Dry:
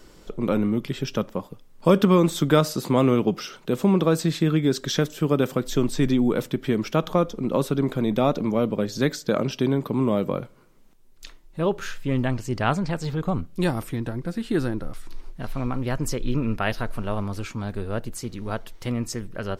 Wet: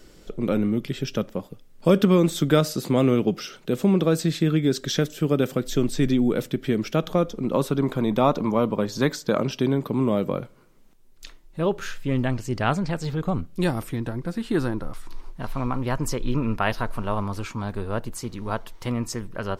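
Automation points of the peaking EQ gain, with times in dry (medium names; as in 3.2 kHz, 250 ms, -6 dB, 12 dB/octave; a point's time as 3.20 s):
peaking EQ 1 kHz 0.57 oct
7.12 s -7 dB
7.54 s +1 dB
8.31 s +8 dB
9.04 s +8 dB
9.66 s -1 dB
13.75 s -1 dB
14.67 s +7 dB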